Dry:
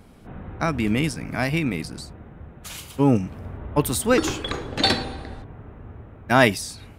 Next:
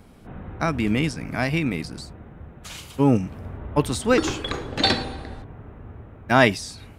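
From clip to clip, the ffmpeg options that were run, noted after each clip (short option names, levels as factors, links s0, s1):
-filter_complex "[0:a]acrossover=split=8100[s0][s1];[s1]acompressor=threshold=0.00282:ratio=4:attack=1:release=60[s2];[s0][s2]amix=inputs=2:normalize=0"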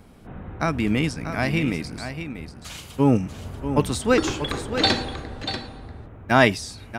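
-af "aecho=1:1:639:0.335"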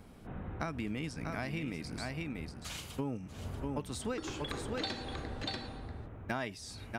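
-af "acompressor=threshold=0.0355:ratio=8,volume=0.562"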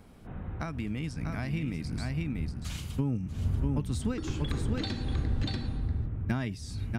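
-af "asubboost=boost=6:cutoff=240"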